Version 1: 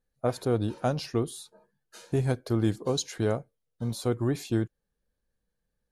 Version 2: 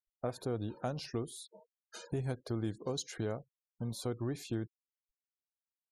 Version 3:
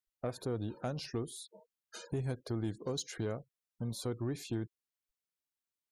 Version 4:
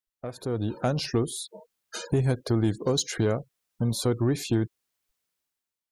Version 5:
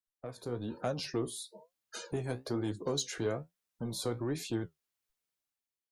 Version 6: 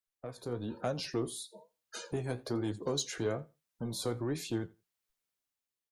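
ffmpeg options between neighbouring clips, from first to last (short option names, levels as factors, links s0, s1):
-af "afftfilt=real='re*gte(hypot(re,im),0.00355)':imag='im*gte(hypot(re,im),0.00355)':win_size=1024:overlap=0.75,acompressor=threshold=0.00562:ratio=2,volume=1.26"
-af "equalizer=f=790:t=o:w=0.67:g=-3,asoftclip=type=tanh:threshold=0.0501,volume=1.12"
-af "dynaudnorm=f=160:g=7:m=3.98"
-filter_complex "[0:a]flanger=delay=9.1:depth=9:regen=55:speed=1.1:shape=triangular,acrossover=split=230|4500[s0][s1][s2];[s0]asoftclip=type=tanh:threshold=0.015[s3];[s3][s1][s2]amix=inputs=3:normalize=0,volume=0.708"
-af "aecho=1:1:85|170:0.0708|0.0113"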